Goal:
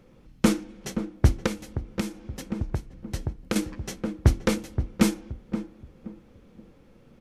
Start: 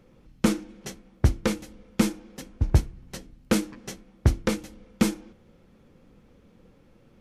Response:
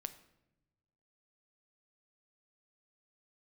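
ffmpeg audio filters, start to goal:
-filter_complex "[0:a]asplit=2[a][b];[b]adelay=524,lowpass=f=860:p=1,volume=-8.5dB,asplit=2[c][d];[d]adelay=524,lowpass=f=860:p=1,volume=0.32,asplit=2[e][f];[f]adelay=524,lowpass=f=860:p=1,volume=0.32,asplit=2[g][h];[h]adelay=524,lowpass=f=860:p=1,volume=0.32[i];[a][c][e][g][i]amix=inputs=5:normalize=0,asettb=1/sr,asplit=3[j][k][l];[j]atrim=end=1.464[m];[k]atrim=start=1.46:end=3.56,asetpts=PTS-STARTPTS,afade=t=in:d=0.004:c=qsin,afade=t=out:st=2.096:d=0.004:c=qsin,acompressor=threshold=-26dB:ratio=12[n];[l]atrim=start=3.556[o];[m][n]acrossfade=d=0.004:c1=hsin:c2=qsin[p];[p][o]acrossfade=d=0.004:c1=qsin:c2=hsin,volume=1.5dB"

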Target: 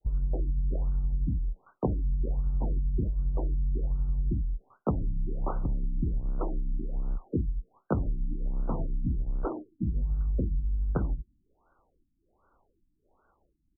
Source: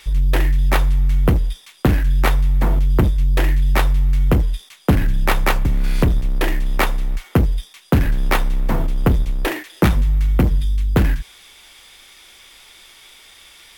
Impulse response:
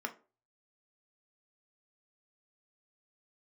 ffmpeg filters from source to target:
-filter_complex "[0:a]agate=range=-33dB:threshold=-36dB:ratio=3:detection=peak,adynamicequalizer=threshold=0.0141:dfrequency=1500:dqfactor=0.86:tfrequency=1500:tqfactor=0.86:attack=5:release=100:ratio=0.375:range=3:mode=cutabove:tftype=bell,asplit=3[a][b][c];[b]asetrate=33038,aresample=44100,atempo=1.33484,volume=-15dB[d];[c]asetrate=55563,aresample=44100,atempo=0.793701,volume=-14dB[e];[a][d][e]amix=inputs=3:normalize=0,acompressor=threshold=-27dB:ratio=5,afftfilt=real='re*lt(b*sr/1024,300*pow(1600/300,0.5+0.5*sin(2*PI*1.3*pts/sr)))':imag='im*lt(b*sr/1024,300*pow(1600/300,0.5+0.5*sin(2*PI*1.3*pts/sr)))':win_size=1024:overlap=0.75"

